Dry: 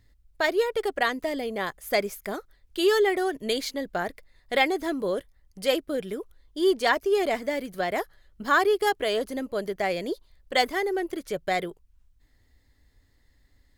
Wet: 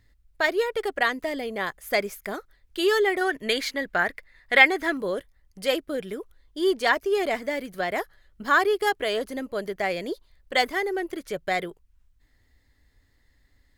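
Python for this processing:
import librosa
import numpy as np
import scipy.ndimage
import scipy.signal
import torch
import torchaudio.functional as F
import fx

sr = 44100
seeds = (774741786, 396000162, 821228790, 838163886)

y = fx.peak_eq(x, sr, hz=1800.0, db=fx.steps((0.0, 4.0), (3.21, 12.5), (4.97, 3.5)), octaves=1.4)
y = y * 10.0 ** (-1.0 / 20.0)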